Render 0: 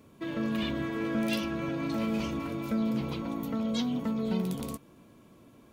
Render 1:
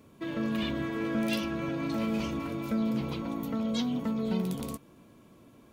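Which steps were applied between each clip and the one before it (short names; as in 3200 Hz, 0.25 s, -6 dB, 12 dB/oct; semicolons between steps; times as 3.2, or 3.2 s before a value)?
nothing audible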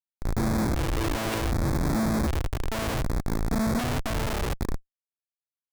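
Schmitt trigger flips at -28 dBFS; LFO notch square 0.66 Hz 200–2900 Hz; gain +8 dB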